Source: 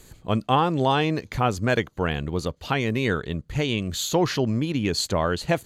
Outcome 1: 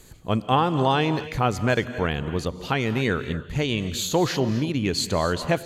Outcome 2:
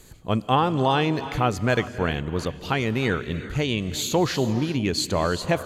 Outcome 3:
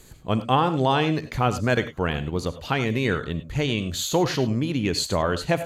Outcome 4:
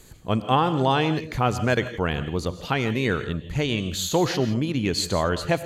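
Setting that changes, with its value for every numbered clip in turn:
reverb whose tail is shaped and stops, gate: 290, 420, 120, 190 milliseconds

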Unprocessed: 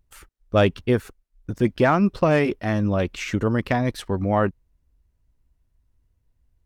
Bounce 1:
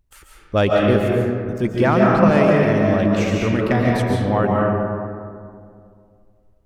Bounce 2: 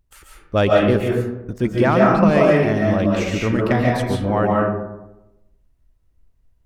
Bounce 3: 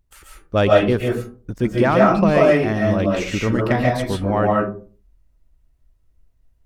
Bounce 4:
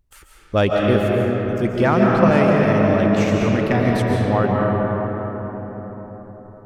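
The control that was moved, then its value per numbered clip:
comb and all-pass reverb, RT60: 2.3, 0.97, 0.41, 4.9 seconds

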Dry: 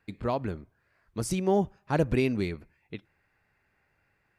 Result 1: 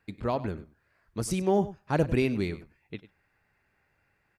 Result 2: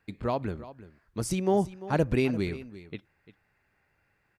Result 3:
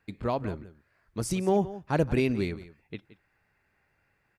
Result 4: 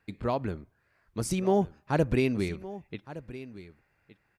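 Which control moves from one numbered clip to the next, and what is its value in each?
single-tap delay, delay time: 98, 345, 172, 1,166 milliseconds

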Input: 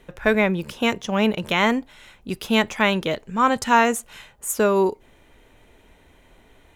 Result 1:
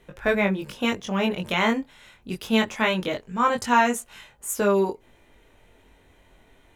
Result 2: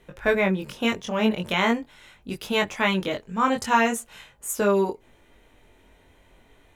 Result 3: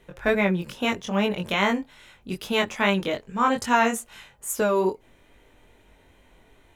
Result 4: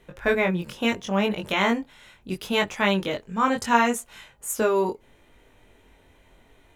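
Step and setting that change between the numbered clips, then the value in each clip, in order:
chorus effect, speed: 0.22, 0.42, 2.4, 0.73 Hertz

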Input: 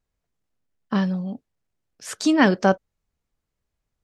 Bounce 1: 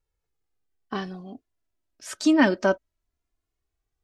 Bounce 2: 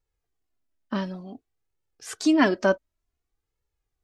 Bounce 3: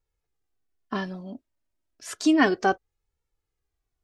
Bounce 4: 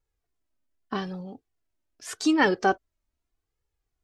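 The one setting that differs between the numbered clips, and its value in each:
flanger, speed: 0.21, 0.55, 0.31, 0.82 Hertz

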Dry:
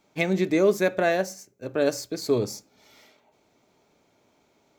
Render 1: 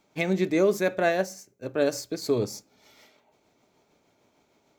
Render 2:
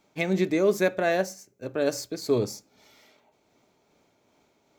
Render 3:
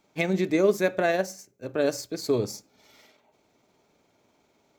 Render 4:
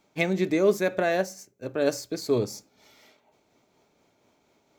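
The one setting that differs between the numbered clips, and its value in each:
amplitude tremolo, speed: 6.6, 2.5, 20, 4.2 Hertz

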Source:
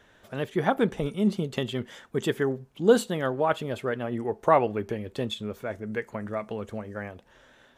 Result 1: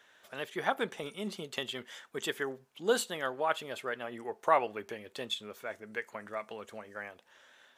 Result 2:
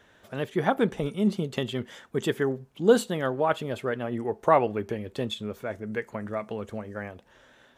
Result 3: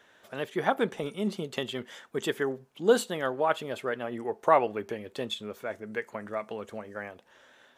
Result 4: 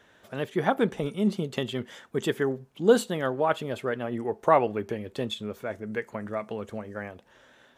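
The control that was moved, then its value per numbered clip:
high-pass filter, corner frequency: 1,300, 45, 430, 110 Hertz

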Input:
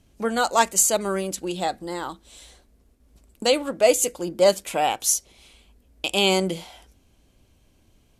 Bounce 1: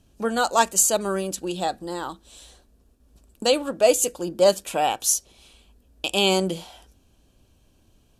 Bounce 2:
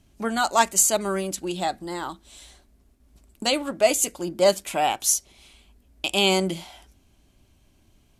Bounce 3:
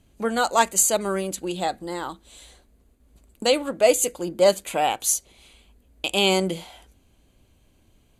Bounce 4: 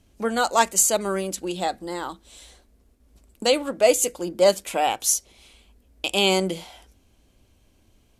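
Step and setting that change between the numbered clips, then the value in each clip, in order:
notch filter, centre frequency: 2,100, 490, 5,400, 150 Hertz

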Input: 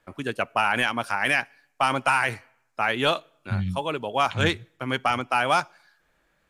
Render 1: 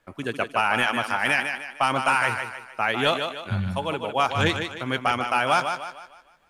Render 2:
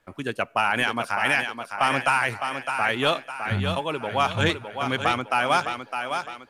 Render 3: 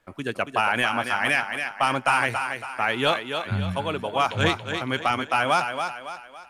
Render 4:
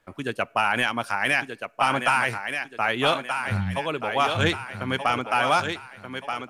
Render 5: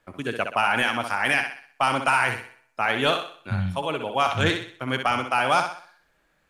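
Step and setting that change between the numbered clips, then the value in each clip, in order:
feedback echo with a high-pass in the loop, delay time: 152, 609, 279, 1,229, 63 milliseconds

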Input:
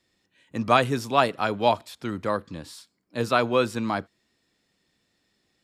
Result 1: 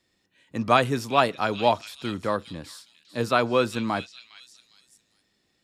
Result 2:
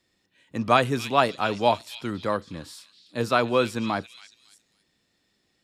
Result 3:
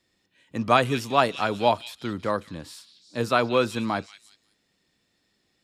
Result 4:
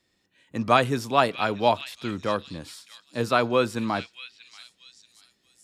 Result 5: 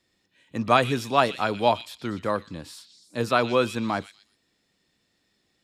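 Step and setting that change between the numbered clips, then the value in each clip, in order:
echo through a band-pass that steps, delay time: 408, 277, 182, 634, 121 milliseconds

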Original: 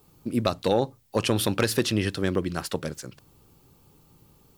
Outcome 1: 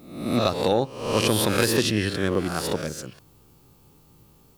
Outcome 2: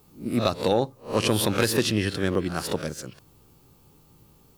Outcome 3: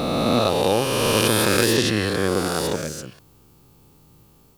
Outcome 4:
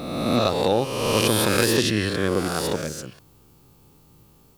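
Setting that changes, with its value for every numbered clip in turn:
peak hold with a rise ahead of every peak, rising 60 dB in: 0.69, 0.3, 3.11, 1.49 seconds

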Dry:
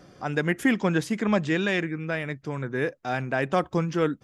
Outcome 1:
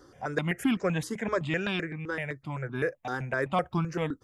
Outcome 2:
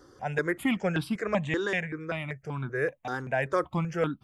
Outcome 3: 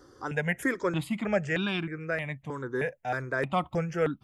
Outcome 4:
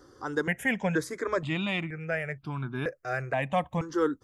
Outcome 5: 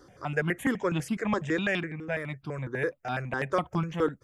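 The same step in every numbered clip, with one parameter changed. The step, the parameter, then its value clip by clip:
step-sequenced phaser, speed: 7.8, 5.2, 3.2, 2.1, 12 Hertz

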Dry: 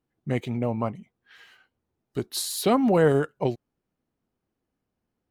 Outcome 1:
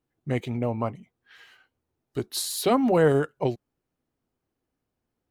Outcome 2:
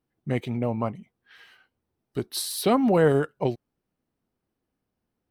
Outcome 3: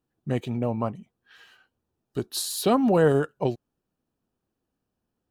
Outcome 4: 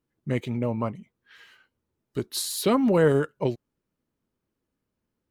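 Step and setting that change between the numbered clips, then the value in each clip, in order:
notch filter, centre frequency: 200, 6,900, 2,100, 740 Hertz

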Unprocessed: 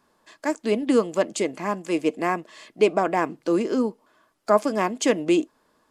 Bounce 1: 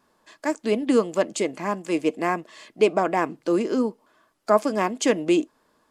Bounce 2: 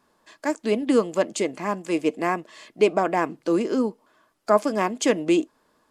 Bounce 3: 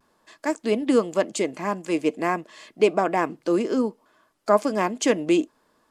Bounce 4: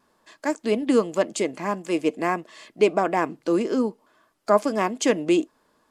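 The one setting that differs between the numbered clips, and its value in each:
pitch vibrato, speed: 2.9, 5.6, 0.36, 1.7 Hertz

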